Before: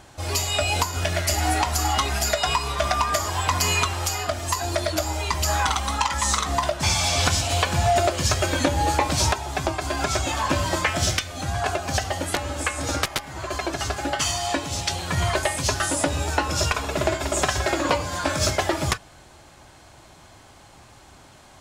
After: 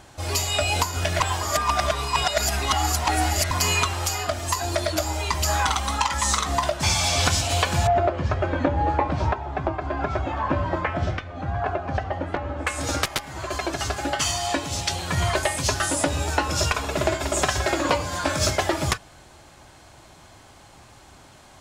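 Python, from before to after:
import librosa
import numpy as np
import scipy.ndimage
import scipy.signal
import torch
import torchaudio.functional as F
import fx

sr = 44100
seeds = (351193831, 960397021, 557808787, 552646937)

y = fx.lowpass(x, sr, hz=1500.0, slope=12, at=(7.87, 12.67))
y = fx.edit(y, sr, fx.reverse_span(start_s=1.2, length_s=2.31), tone=tone)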